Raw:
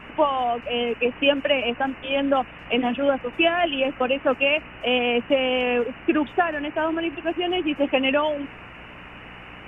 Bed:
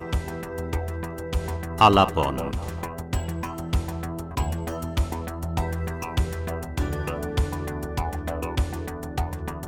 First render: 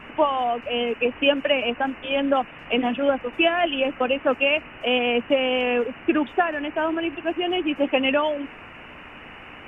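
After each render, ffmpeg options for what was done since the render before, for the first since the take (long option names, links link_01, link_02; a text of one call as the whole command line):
ffmpeg -i in.wav -af "bandreject=frequency=60:width_type=h:width=4,bandreject=frequency=120:width_type=h:width=4,bandreject=frequency=180:width_type=h:width=4" out.wav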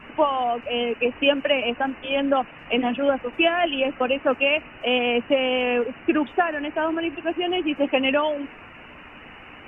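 ffmpeg -i in.wav -af "afftdn=noise_reduction=6:noise_floor=-43" out.wav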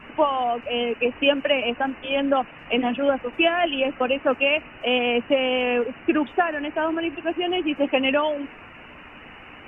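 ffmpeg -i in.wav -af anull out.wav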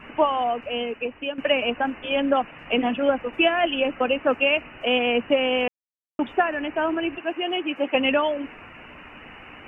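ffmpeg -i in.wav -filter_complex "[0:a]asettb=1/sr,asplit=3[link_01][link_02][link_03];[link_01]atrim=end=7.184[link_04];[link_02]atrim=start=7.18:end=7.95,asetpts=PTS-STARTPTS,afade=type=in:duration=0.004:curve=qsin,afade=type=out:start_time=0.766:duration=0.004:curve=qsin,highpass=frequency=390:poles=1[link_05];[link_03]atrim=start=7.946[link_06];[link_04][link_05]acrossfade=duration=0.004:curve1=hsin:curve2=qsin[link_07];[link_07][link_06]acrossfade=duration=0.004:curve1=qsin:curve2=hsin,asplit=4[link_08][link_09][link_10][link_11];[link_08]atrim=end=1.38,asetpts=PTS-STARTPTS,afade=type=out:start_time=0.44:duration=0.94:silence=0.211349[link_12];[link_09]atrim=start=1.38:end=5.68,asetpts=PTS-STARTPTS,afade=type=in:duration=0.004:curve=hsin:silence=0.211349,afade=type=out:start_time=4.296:duration=0.004:curve=hsin[link_13];[link_10]atrim=start=5.68:end=6.19,asetpts=PTS-STARTPTS,volume=0[link_14];[link_11]atrim=start=6.19,asetpts=PTS-STARTPTS,afade=type=in:duration=0.004:curve=hsin[link_15];[link_12][link_13][link_14][link_15]concat=n=4:v=0:a=1" out.wav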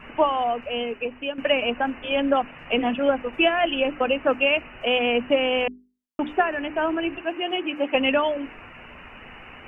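ffmpeg -i in.wav -af "lowshelf=frequency=61:gain=7.5,bandreject=frequency=50:width_type=h:width=6,bandreject=frequency=100:width_type=h:width=6,bandreject=frequency=150:width_type=h:width=6,bandreject=frequency=200:width_type=h:width=6,bandreject=frequency=250:width_type=h:width=6,bandreject=frequency=300:width_type=h:width=6,bandreject=frequency=350:width_type=h:width=6,bandreject=frequency=400:width_type=h:width=6" out.wav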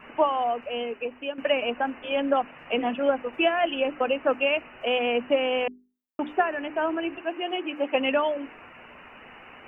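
ffmpeg -i in.wav -af "lowpass=frequency=1300:poles=1,aemphasis=mode=production:type=bsi" out.wav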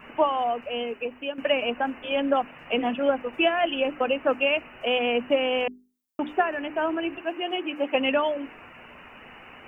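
ffmpeg -i in.wav -af "bass=frequency=250:gain=3,treble=frequency=4000:gain=8" out.wav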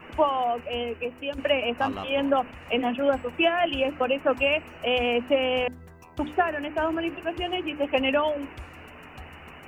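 ffmpeg -i in.wav -i bed.wav -filter_complex "[1:a]volume=-18dB[link_01];[0:a][link_01]amix=inputs=2:normalize=0" out.wav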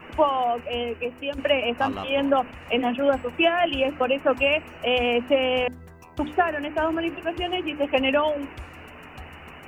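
ffmpeg -i in.wav -af "volume=2dB" out.wav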